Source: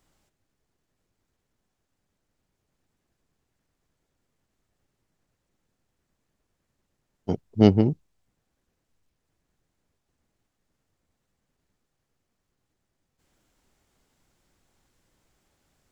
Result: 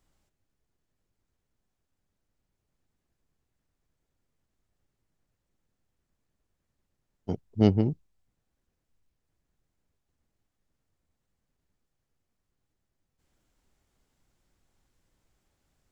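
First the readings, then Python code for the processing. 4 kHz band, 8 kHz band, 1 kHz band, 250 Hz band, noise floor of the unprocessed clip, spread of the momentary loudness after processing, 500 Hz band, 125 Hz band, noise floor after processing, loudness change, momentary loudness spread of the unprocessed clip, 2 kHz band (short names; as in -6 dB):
-6.0 dB, n/a, -6.0 dB, -5.0 dB, -79 dBFS, 19 LU, -5.5 dB, -3.0 dB, -82 dBFS, -4.5 dB, 20 LU, -6.0 dB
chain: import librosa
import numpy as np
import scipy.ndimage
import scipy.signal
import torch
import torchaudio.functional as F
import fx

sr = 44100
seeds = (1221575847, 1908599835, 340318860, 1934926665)

y = fx.low_shelf(x, sr, hz=97.0, db=7.0)
y = F.gain(torch.from_numpy(y), -6.0).numpy()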